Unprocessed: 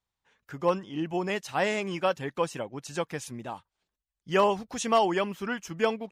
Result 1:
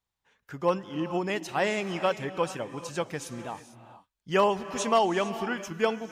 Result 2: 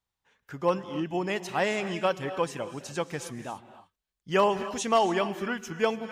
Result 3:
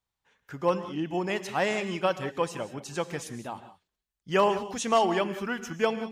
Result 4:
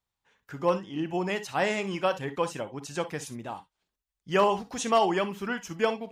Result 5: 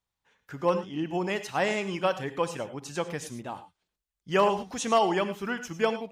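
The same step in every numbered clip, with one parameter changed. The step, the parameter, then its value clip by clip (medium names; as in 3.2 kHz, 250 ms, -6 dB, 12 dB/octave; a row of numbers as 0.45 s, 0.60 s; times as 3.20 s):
gated-style reverb, gate: 480 ms, 310 ms, 210 ms, 80 ms, 130 ms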